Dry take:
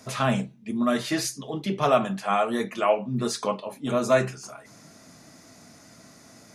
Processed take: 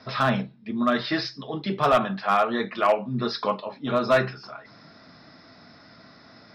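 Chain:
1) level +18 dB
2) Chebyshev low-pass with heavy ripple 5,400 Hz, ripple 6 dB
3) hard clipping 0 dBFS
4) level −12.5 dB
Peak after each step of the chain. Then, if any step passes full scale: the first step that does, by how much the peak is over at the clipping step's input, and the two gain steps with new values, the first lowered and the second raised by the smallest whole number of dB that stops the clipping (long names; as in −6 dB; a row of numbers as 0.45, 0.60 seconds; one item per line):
+10.0, +7.0, 0.0, −12.5 dBFS
step 1, 7.0 dB
step 1 +11 dB, step 4 −5.5 dB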